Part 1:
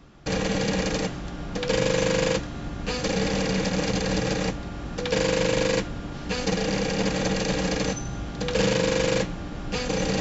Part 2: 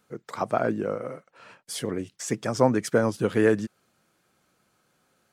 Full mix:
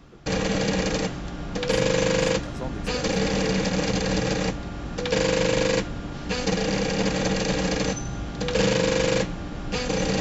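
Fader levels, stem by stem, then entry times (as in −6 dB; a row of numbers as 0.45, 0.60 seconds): +1.0, −15.0 decibels; 0.00, 0.00 seconds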